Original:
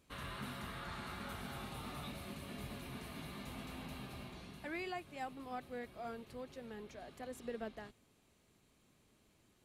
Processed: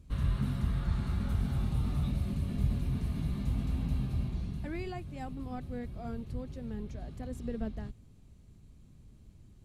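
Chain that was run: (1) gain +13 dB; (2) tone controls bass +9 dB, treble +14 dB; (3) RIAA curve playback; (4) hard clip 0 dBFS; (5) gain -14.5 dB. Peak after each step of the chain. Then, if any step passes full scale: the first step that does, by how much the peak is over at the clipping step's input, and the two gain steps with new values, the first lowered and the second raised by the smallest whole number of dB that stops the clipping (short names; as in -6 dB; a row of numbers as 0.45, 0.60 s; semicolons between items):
-18.5, -13.5, -2.5, -2.5, -17.0 dBFS; no overload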